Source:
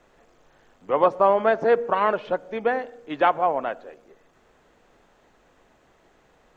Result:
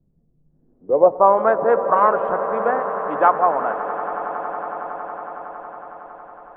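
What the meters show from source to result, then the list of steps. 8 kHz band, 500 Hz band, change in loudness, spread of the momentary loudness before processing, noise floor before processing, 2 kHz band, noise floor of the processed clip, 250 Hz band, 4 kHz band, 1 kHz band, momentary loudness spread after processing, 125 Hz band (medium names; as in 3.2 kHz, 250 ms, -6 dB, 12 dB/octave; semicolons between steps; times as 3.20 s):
no reading, +4.5 dB, +3.5 dB, 11 LU, -61 dBFS, +1.5 dB, -61 dBFS, +2.0 dB, under -10 dB, +6.0 dB, 19 LU, +1.5 dB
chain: low-pass sweep 160 Hz -> 1.2 kHz, 0.45–1.33 s; echo with a slow build-up 92 ms, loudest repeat 8, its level -16.5 dB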